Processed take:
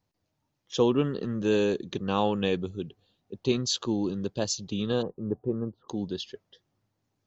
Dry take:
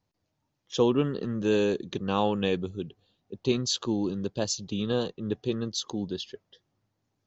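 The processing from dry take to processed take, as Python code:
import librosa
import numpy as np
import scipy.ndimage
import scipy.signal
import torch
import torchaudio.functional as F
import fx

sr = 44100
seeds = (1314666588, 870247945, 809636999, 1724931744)

y = fx.lowpass(x, sr, hz=1100.0, slope=24, at=(5.01, 5.88), fade=0.02)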